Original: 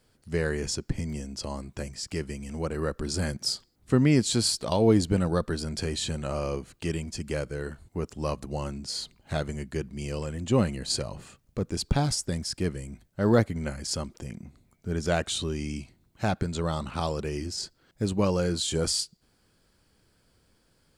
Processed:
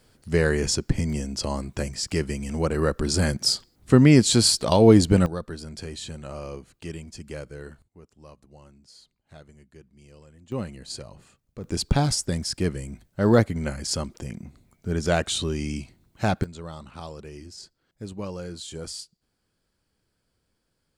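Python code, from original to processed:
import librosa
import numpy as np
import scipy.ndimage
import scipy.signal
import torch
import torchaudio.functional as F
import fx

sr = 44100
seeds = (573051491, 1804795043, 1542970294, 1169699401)

y = fx.gain(x, sr, db=fx.steps((0.0, 6.5), (5.26, -5.5), (7.82, -18.0), (10.52, -7.5), (11.64, 3.5), (16.44, -9.0)))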